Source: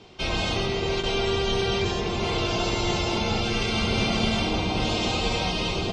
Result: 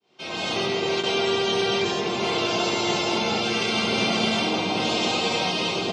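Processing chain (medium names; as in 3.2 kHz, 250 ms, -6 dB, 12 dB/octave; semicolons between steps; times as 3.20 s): fade-in on the opening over 0.63 s; Bessel high-pass 210 Hz, order 4; trim +3 dB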